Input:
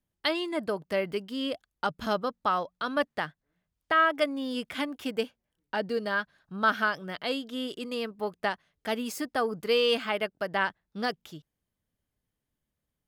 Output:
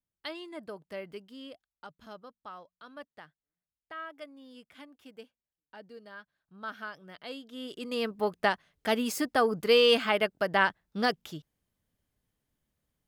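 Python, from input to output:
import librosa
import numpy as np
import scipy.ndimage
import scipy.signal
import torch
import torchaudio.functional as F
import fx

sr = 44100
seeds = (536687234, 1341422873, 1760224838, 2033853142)

y = fx.gain(x, sr, db=fx.line((1.2, -11.5), (1.9, -18.5), (6.13, -18.5), (7.52, -9.0), (8.07, 3.0)))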